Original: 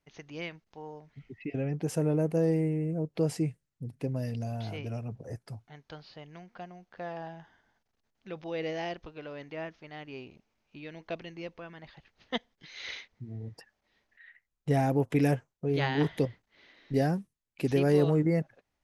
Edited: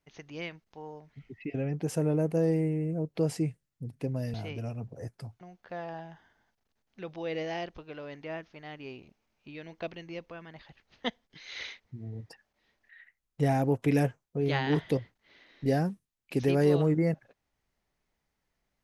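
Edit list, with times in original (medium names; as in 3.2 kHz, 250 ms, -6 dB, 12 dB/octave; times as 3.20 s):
4.34–4.62 s: delete
5.69–6.69 s: delete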